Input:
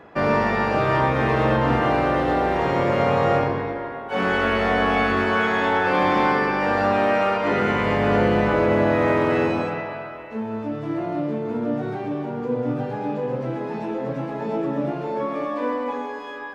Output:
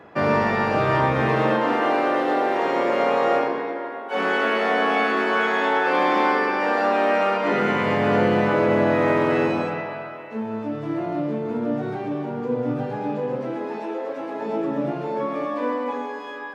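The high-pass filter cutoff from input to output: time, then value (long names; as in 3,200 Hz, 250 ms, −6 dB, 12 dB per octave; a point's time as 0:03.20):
high-pass filter 24 dB per octave
0:01.19 74 Hz
0:01.69 250 Hz
0:07.03 250 Hz
0:07.90 110 Hz
0:13.14 110 Hz
0:14.06 370 Hz
0:14.93 120 Hz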